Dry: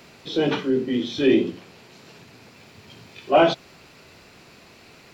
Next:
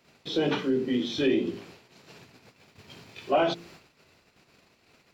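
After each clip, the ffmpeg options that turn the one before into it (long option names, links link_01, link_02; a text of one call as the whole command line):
ffmpeg -i in.wav -af "bandreject=frequency=57.03:width_type=h:width=4,bandreject=frequency=114.06:width_type=h:width=4,bandreject=frequency=171.09:width_type=h:width=4,bandreject=frequency=228.12:width_type=h:width=4,bandreject=frequency=285.15:width_type=h:width=4,bandreject=frequency=342.18:width_type=h:width=4,bandreject=frequency=399.21:width_type=h:width=4,bandreject=frequency=456.24:width_type=h:width=4,agate=range=-15dB:threshold=-47dB:ratio=16:detection=peak,acompressor=threshold=-21dB:ratio=2.5,volume=-1.5dB" out.wav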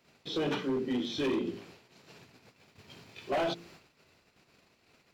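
ffmpeg -i in.wav -af "volume=22.5dB,asoftclip=hard,volume=-22.5dB,volume=-4dB" out.wav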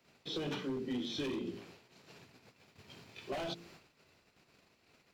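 ffmpeg -i in.wav -filter_complex "[0:a]acrossover=split=200|3000[link_01][link_02][link_03];[link_02]acompressor=threshold=-35dB:ratio=6[link_04];[link_01][link_04][link_03]amix=inputs=3:normalize=0,volume=-2.5dB" out.wav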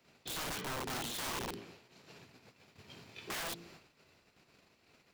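ffmpeg -i in.wav -af "aeval=exprs='(mod(59.6*val(0)+1,2)-1)/59.6':channel_layout=same,volume=1dB" out.wav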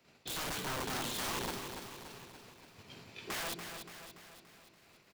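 ffmpeg -i in.wav -af "aecho=1:1:287|574|861|1148|1435|1722|2009:0.422|0.232|0.128|0.0702|0.0386|0.0212|0.0117,volume=1dB" out.wav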